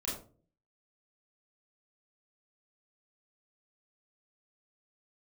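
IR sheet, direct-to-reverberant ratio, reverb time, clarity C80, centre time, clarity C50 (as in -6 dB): -7.0 dB, no single decay rate, 9.0 dB, 45 ms, 4.0 dB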